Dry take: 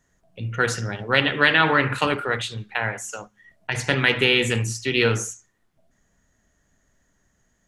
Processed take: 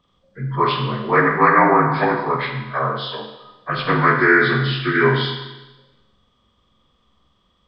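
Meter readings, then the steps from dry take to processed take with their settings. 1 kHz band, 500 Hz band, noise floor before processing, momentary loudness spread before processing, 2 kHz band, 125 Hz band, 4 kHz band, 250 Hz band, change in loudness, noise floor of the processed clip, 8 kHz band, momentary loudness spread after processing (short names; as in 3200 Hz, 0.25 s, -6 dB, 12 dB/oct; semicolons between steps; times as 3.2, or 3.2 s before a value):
+9.5 dB, +5.0 dB, -68 dBFS, 15 LU, +2.5 dB, +4.0 dB, -3.0 dB, +6.0 dB, +4.0 dB, -64 dBFS, under -40 dB, 17 LU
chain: inharmonic rescaling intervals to 79%; Schroeder reverb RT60 1.1 s, combs from 33 ms, DRR 4.5 dB; gain +4.5 dB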